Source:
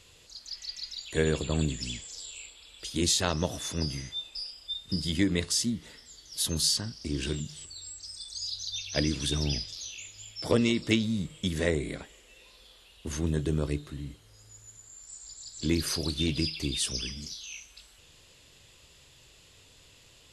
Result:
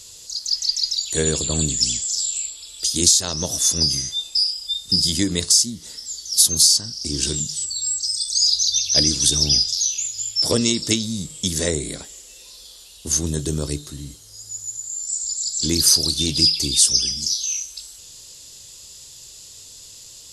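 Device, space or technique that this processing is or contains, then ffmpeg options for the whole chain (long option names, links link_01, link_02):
over-bright horn tweeter: -af "highshelf=frequency=3700:width_type=q:width=1.5:gain=14,alimiter=limit=-6.5dB:level=0:latency=1:release=474,volume=4dB"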